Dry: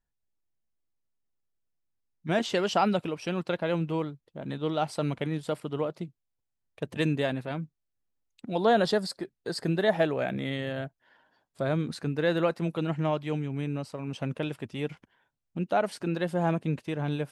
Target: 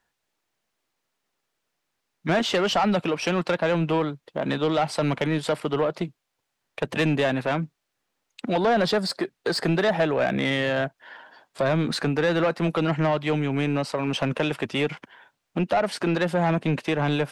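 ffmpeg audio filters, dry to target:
ffmpeg -i in.wav -filter_complex "[0:a]acrossover=split=220[link_01][link_02];[link_02]acompressor=threshold=-37dB:ratio=2.5[link_03];[link_01][link_03]amix=inputs=2:normalize=0,asplit=2[link_04][link_05];[link_05]highpass=frequency=720:poles=1,volume=26dB,asoftclip=type=tanh:threshold=-10.5dB[link_06];[link_04][link_06]amix=inputs=2:normalize=0,lowpass=frequency=3400:poles=1,volume=-6dB" out.wav

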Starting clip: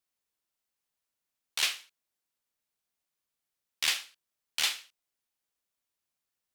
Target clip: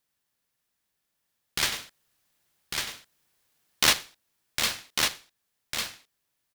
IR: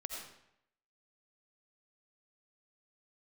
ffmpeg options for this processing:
-filter_complex "[0:a]asettb=1/sr,asplit=3[link_01][link_02][link_03];[link_01]atrim=end=1.724[link_04];[link_02]atrim=start=1.72:end=3.93,asetpts=PTS-STARTPTS,afade=type=in:duration=0.004:curve=qsin,afade=type=out:start_time=2.206:duration=0.004:curve=qsin,acontrast=76[link_05];[link_03]atrim=start=3.926[link_06];[link_04][link_05]acrossfade=duration=0.004:curve1=hsin:curve2=qsin[link_07];[link_07][link_06]acrossfade=duration=0.004:curve1=qsin:curve2=hsin,equalizer=frequency=930:width=5.6:gain=7.5,asplit=2[link_08][link_09];[link_09]acompressor=threshold=-39dB:ratio=6,volume=1.5dB[link_10];[link_08][link_10]amix=inputs=2:normalize=0,equalizer=frequency=7300:width=7.5:gain=-5.5,aecho=1:1:1150:0.596,aeval=exprs='val(0)*sgn(sin(2*PI*800*n/s))':channel_layout=same"

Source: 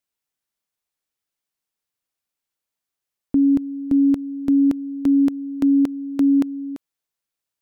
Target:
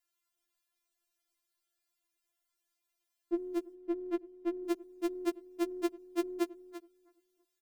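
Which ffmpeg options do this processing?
ffmpeg -i in.wav -filter_complex "[0:a]asettb=1/sr,asplit=3[link_01][link_02][link_03];[link_01]atrim=end=3.744[link_04];[link_02]atrim=start=3.74:end=4.65,asetpts=PTS-STARTPTS,afade=type=in:duration=0.004:curve=qsin,afade=type=out:start_time=0.906:duration=0.004:curve=qsin,bass=frequency=250:gain=0,treble=frequency=4000:gain=-15[link_05];[link_03]atrim=start=4.646[link_06];[link_04][link_05]acrossfade=duration=0.004:curve1=hsin:curve2=qsin[link_07];[link_07][link_06]acrossfade=duration=0.004:curve1=qsin:curve2=hsin,acrossover=split=110|520[link_08][link_09][link_10];[link_08]acompressor=threshold=-58dB:ratio=6[link_11];[link_11][link_09][link_10]amix=inputs=3:normalize=0,asplit=2[link_12][link_13];[link_13]adelay=328,lowpass=frequency=1200:poles=1,volume=-21dB,asplit=2[link_14][link_15];[link_15]adelay=328,lowpass=frequency=1200:poles=1,volume=0.34,asplit=2[link_16][link_17];[link_17]adelay=328,lowpass=frequency=1200:poles=1,volume=0.34[link_18];[link_12][link_14][link_16][link_18]amix=inputs=4:normalize=0,afftfilt=real='re*4*eq(mod(b,16),0)':imag='im*4*eq(mod(b,16),0)':win_size=2048:overlap=0.75,volume=3dB" out.wav

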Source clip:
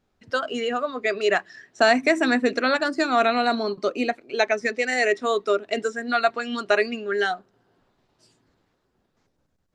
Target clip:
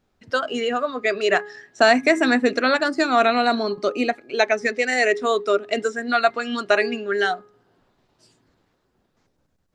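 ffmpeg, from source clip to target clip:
ffmpeg -i in.wav -af "bandreject=frequency=415.8:width_type=h:width=4,bandreject=frequency=831.6:width_type=h:width=4,bandreject=frequency=1247.4:width_type=h:width=4,bandreject=frequency=1663.2:width_type=h:width=4,bandreject=frequency=2079:width_type=h:width=4,volume=2.5dB" out.wav

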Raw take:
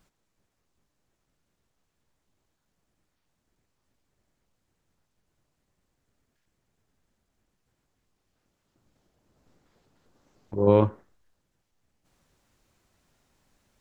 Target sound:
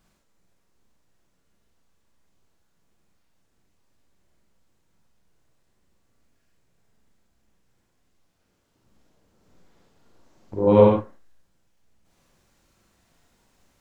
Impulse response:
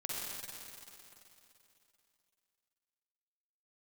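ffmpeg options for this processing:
-filter_complex "[1:a]atrim=start_sample=2205,afade=type=out:start_time=0.26:duration=0.01,atrim=end_sample=11907,asetrate=57330,aresample=44100[link_01];[0:a][link_01]afir=irnorm=-1:irlink=0,volume=6.5dB"

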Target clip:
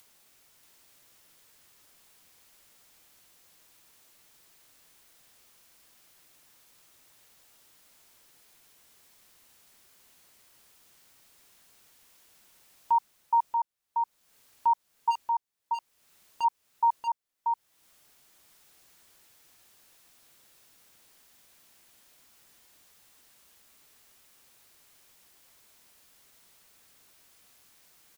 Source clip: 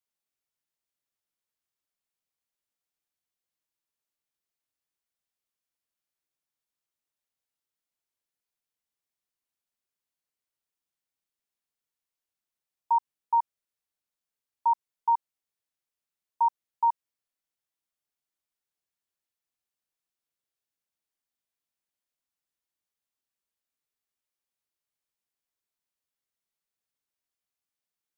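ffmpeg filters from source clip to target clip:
ffmpeg -i in.wav -filter_complex "[0:a]acompressor=mode=upward:threshold=-39dB:ratio=2.5,asplit=3[link_01][link_02][link_03];[link_01]afade=type=out:start_time=15.1:duration=0.02[link_04];[link_02]asoftclip=type=hard:threshold=-29.5dB,afade=type=in:start_time=15.1:duration=0.02,afade=type=out:start_time=16.43:duration=0.02[link_05];[link_03]afade=type=in:start_time=16.43:duration=0.02[link_06];[link_04][link_05][link_06]amix=inputs=3:normalize=0,aecho=1:1:634:0.596" out.wav

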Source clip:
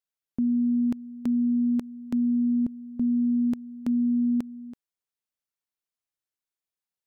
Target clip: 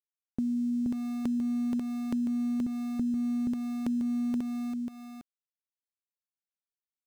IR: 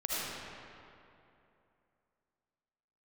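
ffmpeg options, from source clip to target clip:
-af "aeval=exprs='val(0)*gte(abs(val(0)),0.00841)':channel_layout=same,acompressor=threshold=-28dB:ratio=6,aecho=1:1:476:0.631"

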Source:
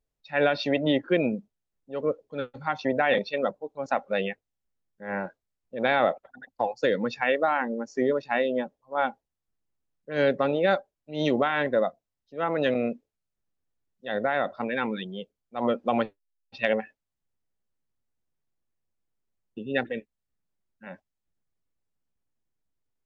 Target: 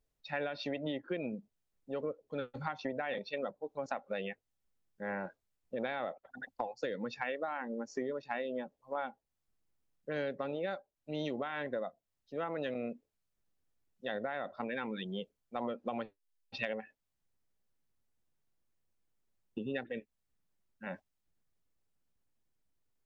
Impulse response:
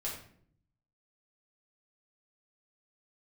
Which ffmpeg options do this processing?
-af "acompressor=threshold=-36dB:ratio=6,volume=1dB"

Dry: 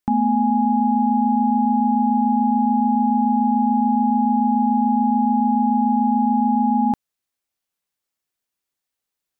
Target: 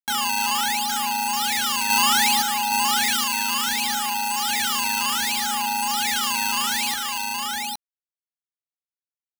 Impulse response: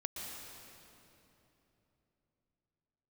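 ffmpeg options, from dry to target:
-filter_complex "[0:a]asettb=1/sr,asplit=3[link_01][link_02][link_03];[link_01]atrim=end=1.904[link_04];[link_02]atrim=start=1.9:end=2.42,asetpts=PTS-STARTPTS,afade=type=in:duration=0.004:curve=qsin,afade=type=out:start_time=0.516:duration=0.004:curve=qsin,acontrast=32[link_05];[link_03]atrim=start=2.416[link_06];[link_04][link_05]acrossfade=duration=0.004:curve1=hsin:curve2=qsin[link_07];[link_07][link_06]acrossfade=duration=0.004:curve1=qsin:curve2=hsin,lowshelf=frequency=390:gain=-11.5,acrusher=samples=14:mix=1:aa=0.000001:lfo=1:lforange=22.4:lforate=0.66,tiltshelf=frequency=760:gain=-9.5,aeval=exprs='sgn(val(0))*max(abs(val(0))-0.0282,0)':channel_layout=same,asettb=1/sr,asplit=3[link_08][link_09][link_10];[link_08]atrim=end=3.174[link_11];[link_09]atrim=start=3.17:end=3.68,asetpts=PTS-STARTPTS,afade=type=in:duration=0.004:curve=qsin,afade=type=out:start_time=0.506:duration=0.004:curve=qsin,highpass=frequency=300:poles=1[link_12];[link_10]atrim=start=3.676[link_13];[link_11][link_12]acrossfade=duration=0.004:curve1=hsin:curve2=qsin[link_14];[link_14][link_13]acrossfade=duration=0.004:curve1=qsin:curve2=hsin,asplit=2[link_15][link_16];[link_16]aecho=0:1:301|817:0.266|0.631[link_17];[link_15][link_17]amix=inputs=2:normalize=0,volume=-2dB"

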